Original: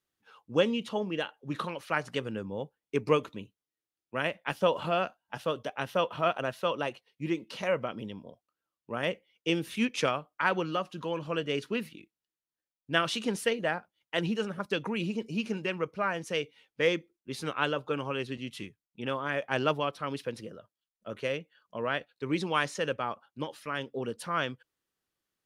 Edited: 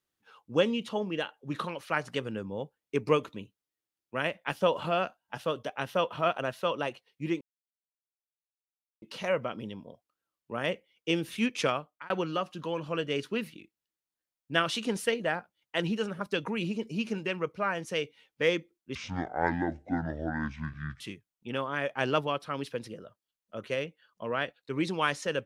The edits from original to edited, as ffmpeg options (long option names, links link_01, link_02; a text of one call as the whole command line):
ffmpeg -i in.wav -filter_complex "[0:a]asplit=5[link_01][link_02][link_03][link_04][link_05];[link_01]atrim=end=7.41,asetpts=PTS-STARTPTS,afade=type=out:start_time=7.406:duration=0.004:curve=hsin,apad=pad_dur=1.61[link_06];[link_02]atrim=start=7.41:end=10.49,asetpts=PTS-STARTPTS,afade=type=in:duration=0.004:curve=hsin,afade=type=out:start_time=2.75:duration=0.33[link_07];[link_03]atrim=start=10.49:end=17.344,asetpts=PTS-STARTPTS,afade=type=in:duration=0.004:curve=hsin[link_08];[link_04]atrim=start=17.34:end=18.53,asetpts=PTS-STARTPTS,asetrate=25578,aresample=44100,atrim=end_sample=90481,asetpts=PTS-STARTPTS[link_09];[link_05]atrim=start=18.526[link_10];[link_06][link_07][link_08]concat=n=3:v=0:a=1[link_11];[link_11][link_09]acrossfade=duration=0.004:curve1=hsin:curve2=hsin[link_12];[link_12][link_10]acrossfade=duration=0.004:curve1=hsin:curve2=hsin" out.wav